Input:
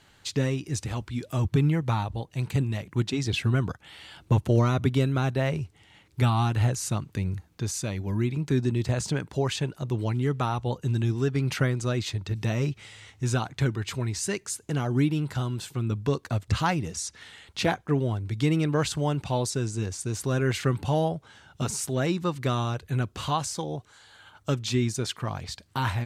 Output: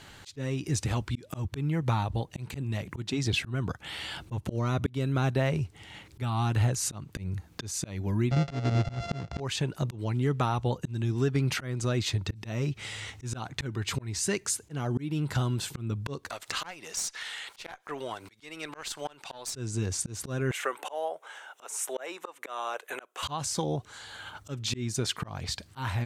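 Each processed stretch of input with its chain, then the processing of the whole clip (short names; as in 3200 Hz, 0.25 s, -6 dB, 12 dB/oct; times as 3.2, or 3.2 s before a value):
8.31–9.4 sample sorter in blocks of 64 samples + LPF 6100 Hz 24 dB/oct + low shelf 200 Hz +10.5 dB
16.3–19.54 HPF 770 Hz + upward compressor, threshold -34 dBFS + tube stage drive 19 dB, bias 0.75
20.51–23.23 HPF 510 Hz 24 dB/oct + bell 4600 Hz -13.5 dB 0.64 oct
whole clip: auto swell 0.408 s; compressor 2:1, threshold -39 dBFS; gain +8.5 dB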